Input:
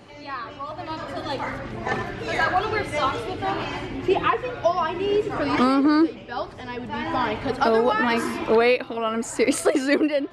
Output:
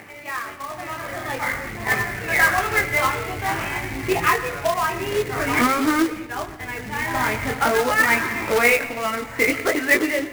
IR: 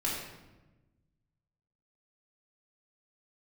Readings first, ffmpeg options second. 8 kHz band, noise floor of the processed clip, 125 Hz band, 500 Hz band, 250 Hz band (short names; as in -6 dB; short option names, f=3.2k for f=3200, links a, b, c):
n/a, -36 dBFS, +3.0 dB, -2.0 dB, -2.5 dB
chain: -filter_complex "[0:a]lowshelf=f=66:g=-10.5,agate=range=-12dB:threshold=-38dB:ratio=16:detection=peak,asubboost=boost=3.5:cutoff=150,acompressor=mode=upward:threshold=-32dB:ratio=2.5,flanger=delay=18.5:depth=5.3:speed=0.49,lowpass=f=2.1k:t=q:w=3.8,acrusher=bits=2:mode=log:mix=0:aa=0.000001,asplit=2[a][b];[1:a]atrim=start_sample=2205,adelay=114[c];[b][c]afir=irnorm=-1:irlink=0,volume=-20dB[d];[a][d]amix=inputs=2:normalize=0,volume=2dB"